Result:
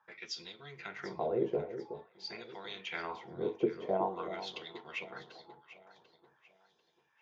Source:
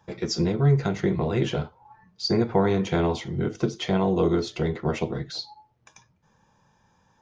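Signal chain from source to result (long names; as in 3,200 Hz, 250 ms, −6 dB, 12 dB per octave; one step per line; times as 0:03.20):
LFO wah 0.48 Hz 420–3,700 Hz, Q 3.2
delay that swaps between a low-pass and a high-pass 371 ms, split 1,000 Hz, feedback 58%, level −10.5 dB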